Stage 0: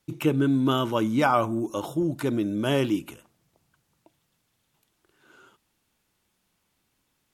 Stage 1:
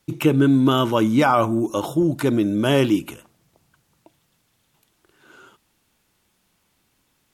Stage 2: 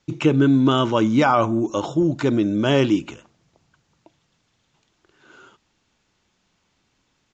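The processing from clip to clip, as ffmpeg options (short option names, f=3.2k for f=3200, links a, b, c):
-af "alimiter=level_in=11.5dB:limit=-1dB:release=50:level=0:latency=1,volume=-5dB"
-af "aresample=16000,aresample=44100"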